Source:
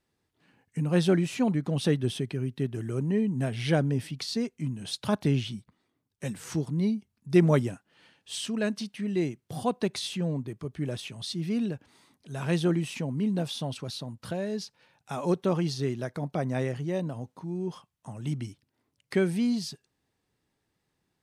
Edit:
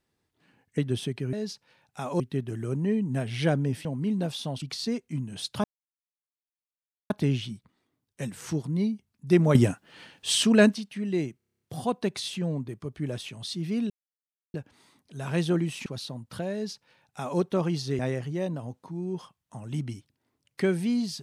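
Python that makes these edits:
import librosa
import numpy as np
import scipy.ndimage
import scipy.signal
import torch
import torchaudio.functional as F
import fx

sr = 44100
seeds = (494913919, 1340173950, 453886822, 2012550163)

y = fx.edit(x, sr, fx.cut(start_s=0.78, length_s=1.13),
    fx.insert_silence(at_s=5.13, length_s=1.46),
    fx.clip_gain(start_s=7.58, length_s=1.19, db=10.5),
    fx.stutter(start_s=9.4, slice_s=0.03, count=9),
    fx.insert_silence(at_s=11.69, length_s=0.64),
    fx.move(start_s=13.01, length_s=0.77, to_s=4.11),
    fx.duplicate(start_s=14.45, length_s=0.87, to_s=2.46),
    fx.cut(start_s=15.91, length_s=0.61), tone=tone)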